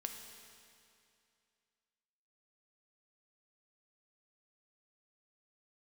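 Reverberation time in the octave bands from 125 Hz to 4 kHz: 2.5, 2.5, 2.5, 2.5, 2.5, 2.4 seconds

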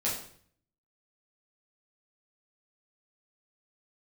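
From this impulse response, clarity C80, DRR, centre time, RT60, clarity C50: 8.5 dB, −7.0 dB, 38 ms, 0.55 s, 4.5 dB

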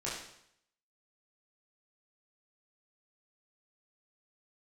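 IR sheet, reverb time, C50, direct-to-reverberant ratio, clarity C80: 0.70 s, 2.0 dB, −8.0 dB, 5.5 dB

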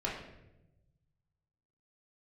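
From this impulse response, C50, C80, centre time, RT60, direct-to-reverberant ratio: 3.5 dB, 7.0 dB, 45 ms, 0.95 s, −5.5 dB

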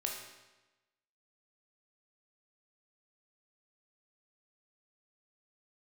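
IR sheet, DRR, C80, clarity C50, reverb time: 0.0 dB, 6.0 dB, 3.5 dB, 1.1 s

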